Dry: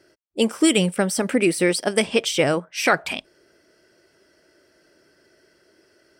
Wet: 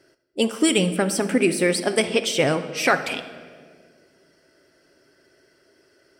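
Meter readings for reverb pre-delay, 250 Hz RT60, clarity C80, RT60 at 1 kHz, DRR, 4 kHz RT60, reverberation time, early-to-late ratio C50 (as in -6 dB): 7 ms, 2.5 s, 13.5 dB, 1.5 s, 8.5 dB, 1.2 s, 1.8 s, 11.5 dB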